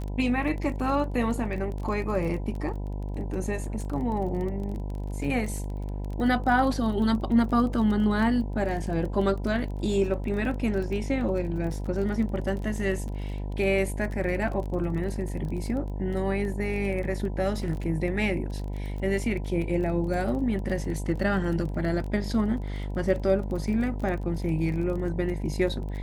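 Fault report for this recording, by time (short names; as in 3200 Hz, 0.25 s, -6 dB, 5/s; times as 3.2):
buzz 50 Hz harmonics 20 -32 dBFS
crackle 24/s -33 dBFS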